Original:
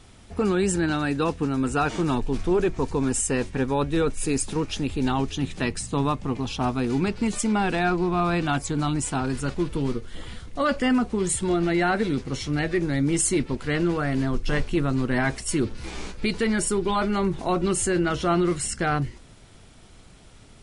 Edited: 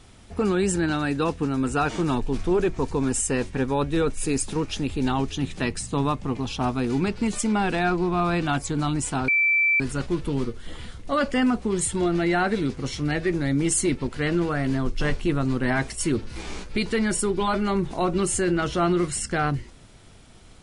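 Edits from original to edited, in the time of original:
9.28 s: add tone 2.33 kHz -17 dBFS 0.52 s

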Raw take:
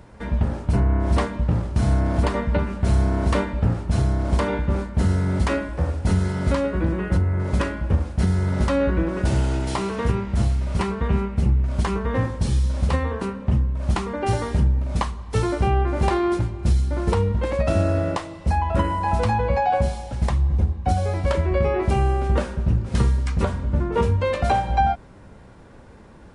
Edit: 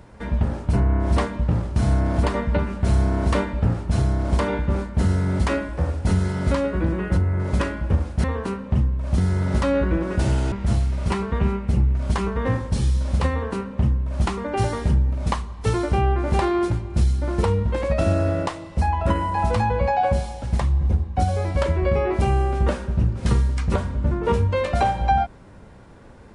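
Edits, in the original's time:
9.58–10.21 s: delete
13.00–13.94 s: copy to 8.24 s

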